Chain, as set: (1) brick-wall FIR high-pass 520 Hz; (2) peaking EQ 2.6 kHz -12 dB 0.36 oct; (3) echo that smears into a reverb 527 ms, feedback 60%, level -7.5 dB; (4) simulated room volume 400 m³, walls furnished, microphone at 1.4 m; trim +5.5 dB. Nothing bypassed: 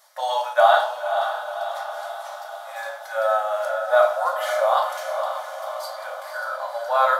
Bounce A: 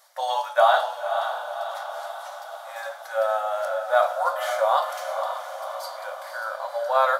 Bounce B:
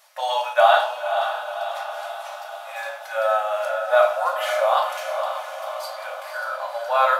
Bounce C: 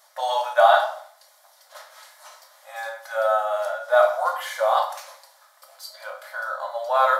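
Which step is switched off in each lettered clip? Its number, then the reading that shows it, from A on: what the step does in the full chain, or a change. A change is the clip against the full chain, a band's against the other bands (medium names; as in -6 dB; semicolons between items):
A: 4, echo-to-direct 0.0 dB to -5.5 dB; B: 2, 4 kHz band +2.5 dB; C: 3, echo-to-direct 0.0 dB to -3.0 dB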